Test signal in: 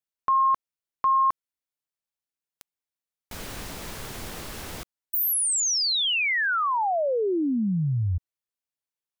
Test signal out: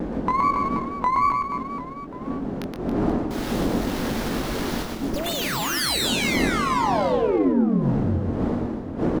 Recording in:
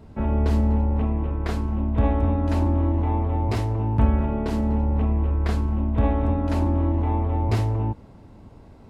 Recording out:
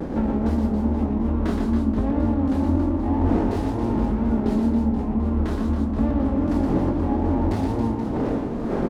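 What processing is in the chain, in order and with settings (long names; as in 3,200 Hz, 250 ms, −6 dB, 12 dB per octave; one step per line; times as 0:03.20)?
wind on the microphone 430 Hz −31 dBFS
graphic EQ with 15 bands 100 Hz −6 dB, 250 Hz +9 dB, 2,500 Hz −5 dB
downward compressor 5 to 1, threshold −30 dBFS
tape wow and flutter 2.1 Hz 110 cents
double-tracking delay 22 ms −6.5 dB
on a send: reverse bouncing-ball delay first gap 120 ms, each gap 1.3×, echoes 5
on the sum: windowed peak hold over 5 samples
level +7.5 dB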